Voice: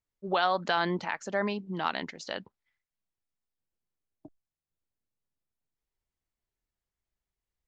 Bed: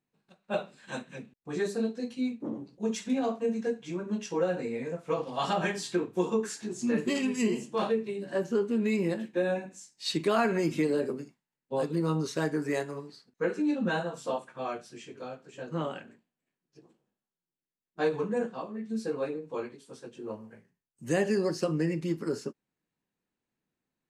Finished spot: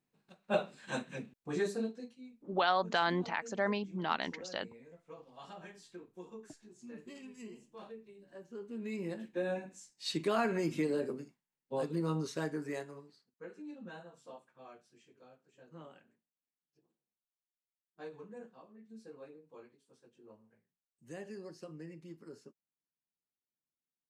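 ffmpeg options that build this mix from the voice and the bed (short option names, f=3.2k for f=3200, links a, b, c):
-filter_complex "[0:a]adelay=2250,volume=-3dB[a];[1:a]volume=15.5dB,afade=t=out:st=1.38:d=0.8:silence=0.0891251,afade=t=in:st=8.48:d=1.18:silence=0.16788,afade=t=out:st=12.18:d=1.23:silence=0.211349[b];[a][b]amix=inputs=2:normalize=0"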